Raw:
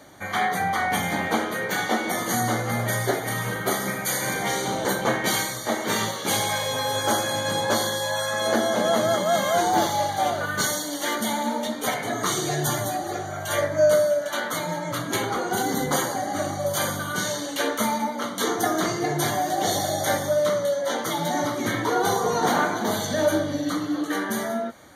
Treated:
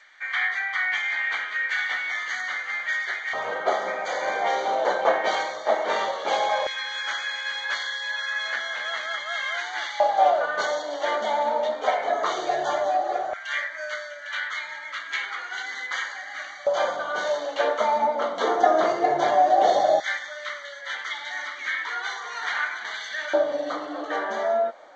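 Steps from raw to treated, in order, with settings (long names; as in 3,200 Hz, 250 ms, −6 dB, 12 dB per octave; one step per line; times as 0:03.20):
0:17.96–0:20.02: low-shelf EQ 310 Hz +10 dB
auto-filter high-pass square 0.15 Hz 620–1,900 Hz
high-frequency loss of the air 200 metres
G.722 64 kbit/s 16,000 Hz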